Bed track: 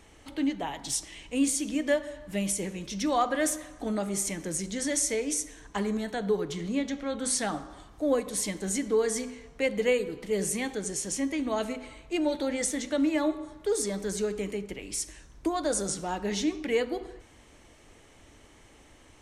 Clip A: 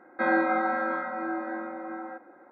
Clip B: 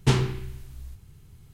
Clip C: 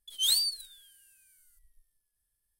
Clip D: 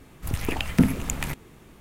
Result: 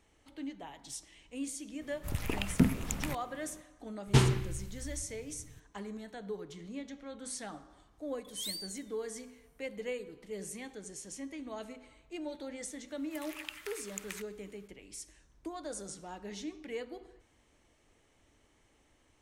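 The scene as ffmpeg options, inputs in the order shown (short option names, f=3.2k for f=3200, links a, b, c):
-filter_complex "[4:a]asplit=2[a][b];[0:a]volume=-13dB[c];[b]highpass=f=1.2k:w=0.5412,highpass=f=1.2k:w=1.3066[d];[a]atrim=end=1.8,asetpts=PTS-STARTPTS,volume=-7dB,afade=t=in:d=0.004:c=hsin,afade=t=out:st=1.796:d=0.004:c=hsin,adelay=1810[e];[2:a]atrim=end=1.53,asetpts=PTS-STARTPTS,volume=-3dB,afade=t=in:d=0.004:c=hsin,afade=t=out:st=1.526:d=0.004:c=hsin,adelay=4070[f];[3:a]atrim=end=2.59,asetpts=PTS-STARTPTS,volume=-14dB,afade=t=in:d=0.004:c=hsin,afade=t=out:st=2.586:d=0.004:c=hsin,adelay=8170[g];[d]atrim=end=1.8,asetpts=PTS-STARTPTS,volume=-11dB,afade=t=in:d=0.004:c=hsin,afade=t=out:st=1.796:d=0.004:c=hsin,adelay=12880[h];[c][e][f][g][h]amix=inputs=5:normalize=0"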